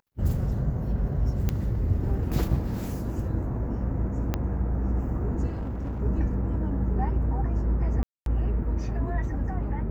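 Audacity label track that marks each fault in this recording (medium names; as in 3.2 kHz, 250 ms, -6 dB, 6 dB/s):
1.490000	1.490000	pop -13 dBFS
4.340000	4.340000	pop -13 dBFS
5.480000	6.020000	clipped -28 dBFS
8.030000	8.260000	dropout 232 ms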